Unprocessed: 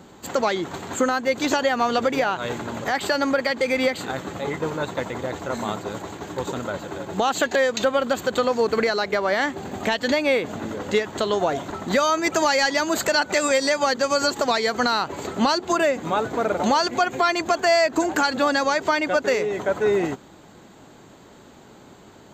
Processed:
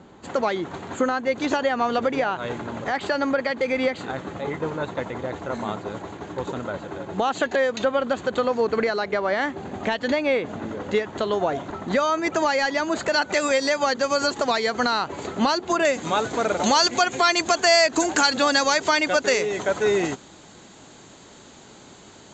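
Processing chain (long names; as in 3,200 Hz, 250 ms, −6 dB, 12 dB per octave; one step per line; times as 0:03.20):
high-shelf EQ 3,500 Hz −9.5 dB, from 0:13.12 −2 dB, from 0:15.85 +12 dB
Chebyshev low-pass filter 7,100 Hz, order 4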